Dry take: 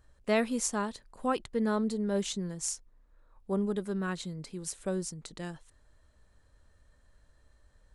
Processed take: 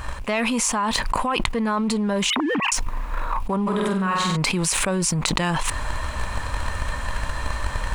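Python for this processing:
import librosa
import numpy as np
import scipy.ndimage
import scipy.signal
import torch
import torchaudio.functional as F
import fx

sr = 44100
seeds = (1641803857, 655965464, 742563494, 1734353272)

y = fx.sine_speech(x, sr, at=(2.3, 2.72))
y = fx.leveller(y, sr, passes=1)
y = fx.rider(y, sr, range_db=3, speed_s=0.5)
y = fx.graphic_eq_15(y, sr, hz=(400, 1000, 2500), db=(-5, 12, 10))
y = fx.room_flutter(y, sr, wall_m=8.1, rt60_s=0.84, at=(3.66, 4.35), fade=0.02)
y = fx.env_flatten(y, sr, amount_pct=100)
y = F.gain(torch.from_numpy(y), -6.0).numpy()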